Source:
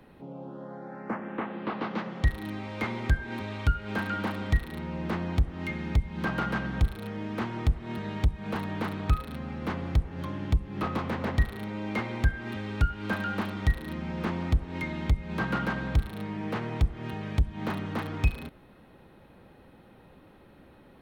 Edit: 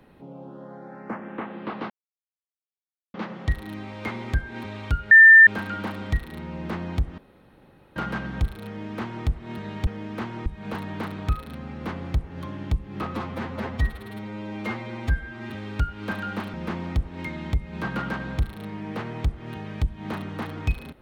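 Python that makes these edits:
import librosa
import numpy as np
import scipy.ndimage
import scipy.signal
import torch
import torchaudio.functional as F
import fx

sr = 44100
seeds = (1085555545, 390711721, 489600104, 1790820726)

y = fx.edit(x, sr, fx.insert_silence(at_s=1.9, length_s=1.24),
    fx.insert_tone(at_s=3.87, length_s=0.36, hz=1790.0, db=-6.5),
    fx.room_tone_fill(start_s=5.58, length_s=0.78),
    fx.duplicate(start_s=7.07, length_s=0.59, to_s=8.27),
    fx.stretch_span(start_s=10.93, length_s=1.59, factor=1.5),
    fx.cut(start_s=13.55, length_s=0.55), tone=tone)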